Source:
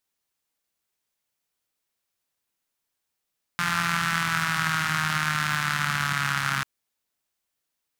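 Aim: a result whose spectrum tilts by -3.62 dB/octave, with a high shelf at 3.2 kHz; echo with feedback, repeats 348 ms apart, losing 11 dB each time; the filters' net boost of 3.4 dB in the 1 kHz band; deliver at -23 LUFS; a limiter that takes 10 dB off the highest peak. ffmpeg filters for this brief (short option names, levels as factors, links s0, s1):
-af "equalizer=f=1000:t=o:g=6,highshelf=f=3200:g=-7.5,alimiter=limit=0.106:level=0:latency=1,aecho=1:1:348|696|1044:0.282|0.0789|0.0221,volume=2.37"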